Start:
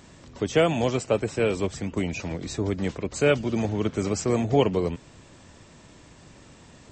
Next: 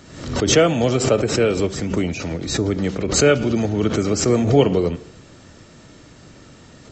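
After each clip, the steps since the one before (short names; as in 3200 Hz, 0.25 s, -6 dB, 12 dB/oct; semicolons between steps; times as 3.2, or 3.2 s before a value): reverb RT60 0.70 s, pre-delay 3 ms, DRR 14 dB; backwards sustainer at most 75 dB/s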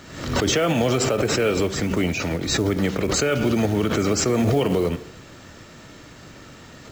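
bell 1700 Hz +5 dB 2.6 oct; limiter -11.5 dBFS, peak gain reduction 11 dB; companded quantiser 6-bit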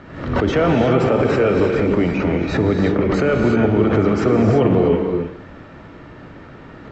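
LPF 1800 Hz 12 dB/oct; non-linear reverb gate 0.37 s rising, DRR 3 dB; gain +4 dB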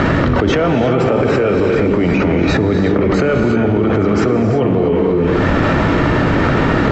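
fast leveller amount 100%; gain -1.5 dB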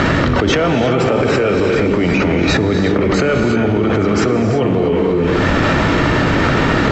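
high shelf 2500 Hz +9 dB; gain -1 dB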